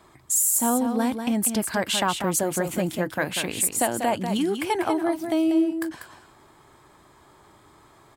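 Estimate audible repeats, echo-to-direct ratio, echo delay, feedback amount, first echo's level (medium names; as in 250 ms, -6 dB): 1, -7.5 dB, 192 ms, no regular repeats, -7.5 dB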